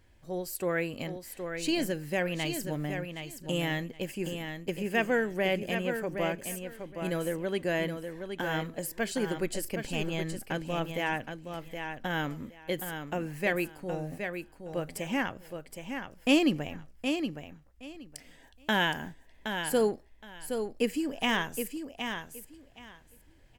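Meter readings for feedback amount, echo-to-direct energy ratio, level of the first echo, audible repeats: 18%, -7.0 dB, -7.0 dB, 2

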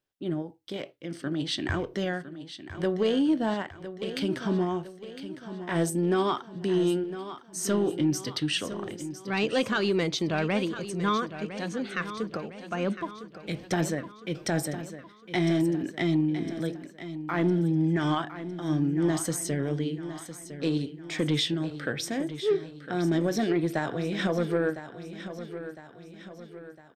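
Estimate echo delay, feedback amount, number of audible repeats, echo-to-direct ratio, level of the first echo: 1.007 s, 48%, 4, -11.0 dB, -12.0 dB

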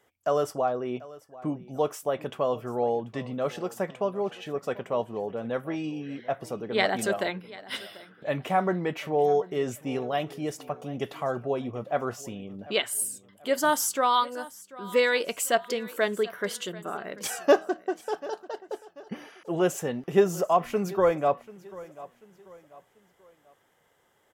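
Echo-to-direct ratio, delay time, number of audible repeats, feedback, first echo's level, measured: -19.0 dB, 0.739 s, 2, 39%, -19.5 dB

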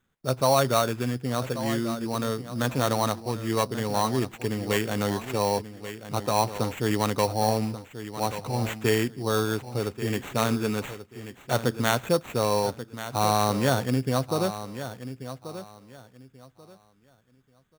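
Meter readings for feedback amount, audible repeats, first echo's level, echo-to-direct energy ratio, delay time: 23%, 2, -12.0 dB, -12.0 dB, 1.135 s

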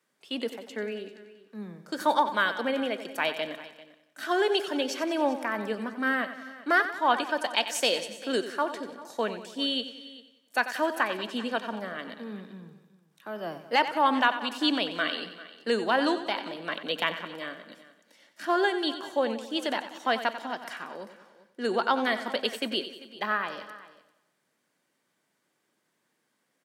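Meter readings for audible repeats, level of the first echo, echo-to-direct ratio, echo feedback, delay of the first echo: 5, -12.0 dB, -10.0 dB, no steady repeat, 92 ms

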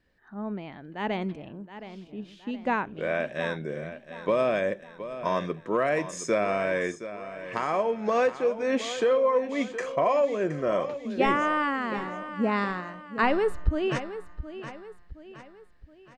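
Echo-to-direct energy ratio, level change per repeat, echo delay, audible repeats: -11.5 dB, -7.0 dB, 0.719 s, 4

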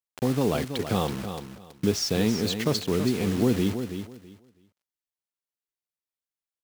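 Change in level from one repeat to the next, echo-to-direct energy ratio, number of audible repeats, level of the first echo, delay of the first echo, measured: -14.0 dB, -9.0 dB, 2, -9.0 dB, 0.327 s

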